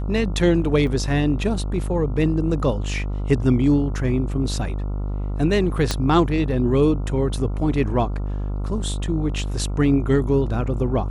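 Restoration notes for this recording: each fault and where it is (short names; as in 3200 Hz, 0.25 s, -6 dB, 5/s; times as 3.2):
buzz 50 Hz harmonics 28 -25 dBFS
0.87 gap 2.9 ms
5.91 pop -6 dBFS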